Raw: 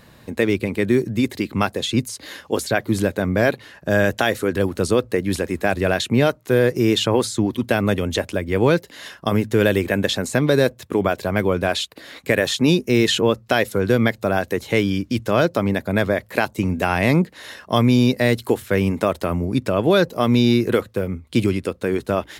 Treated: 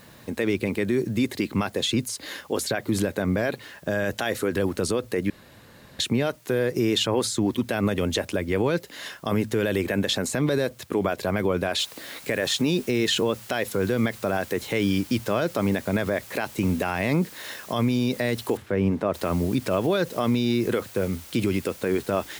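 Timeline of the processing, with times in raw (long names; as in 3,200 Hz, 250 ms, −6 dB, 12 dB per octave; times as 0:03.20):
0:05.30–0:05.99: fill with room tone
0:11.79: noise floor change −58 dB −45 dB
0:18.57–0:19.14: low-pass filter 1,100 Hz 6 dB per octave
whole clip: low-shelf EQ 84 Hz −7 dB; brickwall limiter −14 dBFS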